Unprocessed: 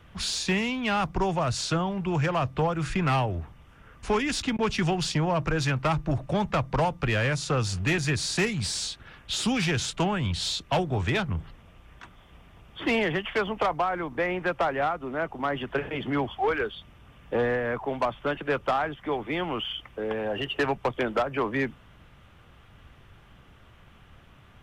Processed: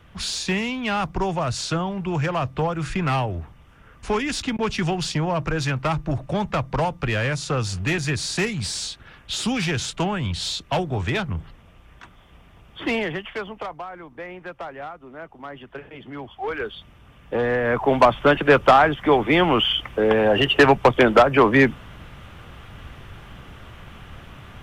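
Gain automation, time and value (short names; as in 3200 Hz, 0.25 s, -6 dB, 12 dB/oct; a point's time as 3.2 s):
12.85 s +2 dB
13.84 s -8.5 dB
16.17 s -8.5 dB
16.75 s +2.5 dB
17.42 s +2.5 dB
17.93 s +12 dB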